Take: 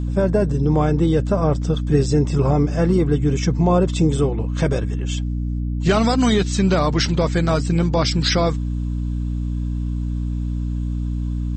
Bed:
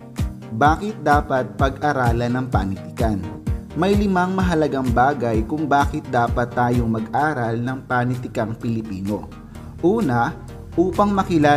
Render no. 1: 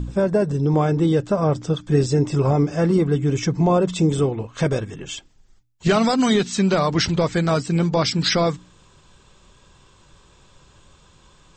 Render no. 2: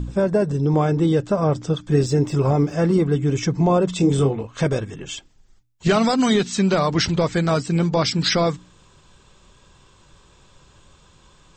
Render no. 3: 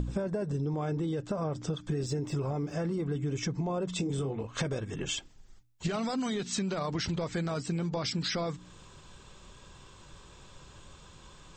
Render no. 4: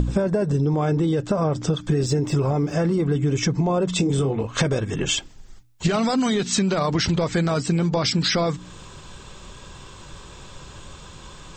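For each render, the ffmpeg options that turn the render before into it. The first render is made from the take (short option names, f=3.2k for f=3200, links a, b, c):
-af "bandreject=f=60:t=h:w=4,bandreject=f=120:t=h:w=4,bandreject=f=180:t=h:w=4,bandreject=f=240:t=h:w=4,bandreject=f=300:t=h:w=4"
-filter_complex "[0:a]asettb=1/sr,asplit=3[a][b][c];[a]atrim=end=1.904[d];[b]atrim=start=1.9:end=2.73,asetpts=PTS-STARTPTS,afade=t=in:d=0.004:c=qsin,afade=t=out:st=0.826:d=0.004:c=qsin,aeval=exprs='sgn(val(0))*max(abs(val(0))-0.00237,0)':c=same[e];[c]atrim=start=2.726[f];[d][e]acrossfade=d=0.004:c1=hsin:c2=qsin[g];[g][f]acrossfade=d=0.004:c1=qsin:c2=hsin,asettb=1/sr,asplit=3[h][i][j];[h]atrim=end=3.984[k];[i]atrim=start=3.98:end=4.43,asetpts=PTS-STARTPTS,afade=t=in:d=0.004:c=qsin,afade=t=out:st=0.446:d=0.004:c=qsin,asplit=2[l][m];[m]adelay=22,volume=-5dB[n];[l][n]amix=inputs=2:normalize=0,atrim=end_sample=19845[o];[j]atrim=start=4.426[p];[k][o]acrossfade=d=0.004:c1=hsin:c2=qsin[q];[q][p]acrossfade=d=0.004:c1=qsin:c2=hsin"
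-af "alimiter=limit=-13.5dB:level=0:latency=1:release=17,acompressor=threshold=-29dB:ratio=12"
-af "volume=11dB"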